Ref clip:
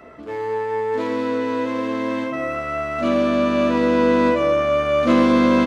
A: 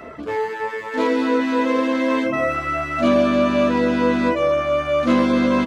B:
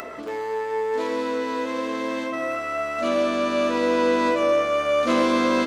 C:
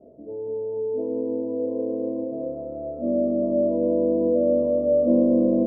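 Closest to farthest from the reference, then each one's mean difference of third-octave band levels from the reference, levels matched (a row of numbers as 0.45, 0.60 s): A, B, C; 3.5, 4.5, 12.5 dB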